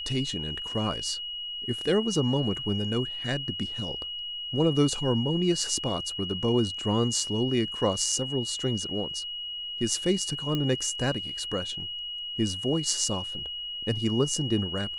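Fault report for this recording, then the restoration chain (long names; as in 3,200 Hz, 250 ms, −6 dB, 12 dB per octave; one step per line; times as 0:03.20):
whistle 2,900 Hz −33 dBFS
0:10.55: click −16 dBFS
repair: click removal
notch filter 2,900 Hz, Q 30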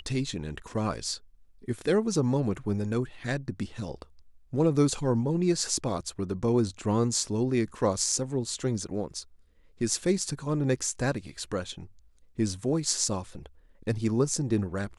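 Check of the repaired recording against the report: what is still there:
none of them is left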